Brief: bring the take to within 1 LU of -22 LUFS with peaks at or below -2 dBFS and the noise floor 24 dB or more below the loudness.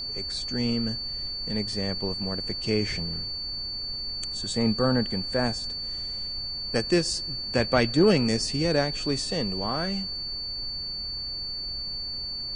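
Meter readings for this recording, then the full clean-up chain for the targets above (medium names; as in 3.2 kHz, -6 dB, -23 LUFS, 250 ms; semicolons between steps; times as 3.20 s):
steady tone 4.5 kHz; tone level -31 dBFS; noise floor -34 dBFS; noise floor target -51 dBFS; loudness -27.0 LUFS; peak level -8.0 dBFS; loudness target -22.0 LUFS
-> band-stop 4.5 kHz, Q 30; noise print and reduce 17 dB; trim +5 dB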